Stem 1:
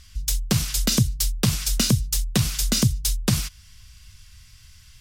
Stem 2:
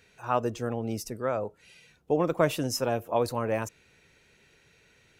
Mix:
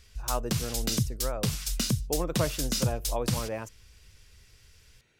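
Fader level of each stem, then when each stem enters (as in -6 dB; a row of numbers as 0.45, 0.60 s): -8.0, -6.0 dB; 0.00, 0.00 s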